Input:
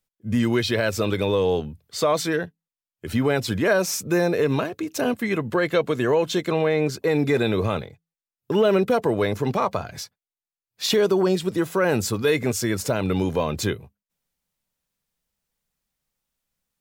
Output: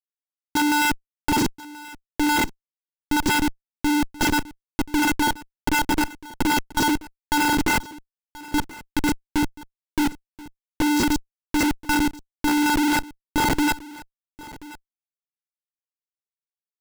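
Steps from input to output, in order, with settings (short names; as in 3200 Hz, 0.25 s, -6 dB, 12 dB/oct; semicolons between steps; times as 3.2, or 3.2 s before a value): spectrum mirrored in octaves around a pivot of 1600 Hz; spectral gate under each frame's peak -15 dB strong; band shelf 1400 Hz +10.5 dB; in parallel at -2.5 dB: limiter -17.5 dBFS, peak gain reduction 10.5 dB; on the sum: small resonant body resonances 350/2700 Hz, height 11 dB, ringing for 60 ms; vocoder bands 8, square 296 Hz; step gate "x..xx..x.x..xx" 82 bpm; Schmitt trigger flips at -29 dBFS; on a send: echo 1.031 s -19.5 dB; on the sum: gain +4.5 dB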